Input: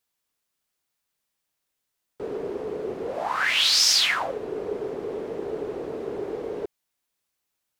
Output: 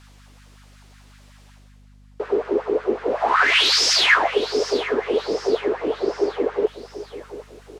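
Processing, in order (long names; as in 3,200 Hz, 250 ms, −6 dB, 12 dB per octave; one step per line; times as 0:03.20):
double-tracking delay 12 ms −11.5 dB
reversed playback
upward compression, threshold −38 dBFS
reversed playback
soft clipping −17 dBFS, distortion −14 dB
high-frequency loss of the air 69 metres
repeating echo 771 ms, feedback 47%, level −14.5 dB
auto-filter high-pass sine 5.4 Hz 260–1,600 Hz
mains hum 50 Hz, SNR 25 dB
level +6.5 dB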